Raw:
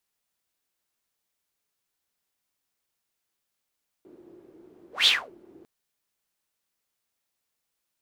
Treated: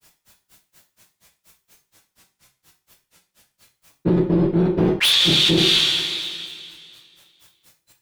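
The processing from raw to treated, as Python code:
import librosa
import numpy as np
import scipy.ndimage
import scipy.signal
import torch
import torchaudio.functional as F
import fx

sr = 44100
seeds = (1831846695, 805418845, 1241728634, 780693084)

y = fx.octave_divider(x, sr, octaves=1, level_db=2.0)
y = fx.noise_reduce_blind(y, sr, reduce_db=18)
y = fx.granulator(y, sr, seeds[0], grain_ms=121.0, per_s=4.2, spray_ms=100.0, spread_st=0)
y = fx.rev_double_slope(y, sr, seeds[1], early_s=0.34, late_s=2.2, knee_db=-27, drr_db=2.0)
y = np.clip(y, -10.0 ** (-22.0 / 20.0), 10.0 ** (-22.0 / 20.0))
y = fx.env_flatten(y, sr, amount_pct=100)
y = F.gain(torch.from_numpy(y), 7.0).numpy()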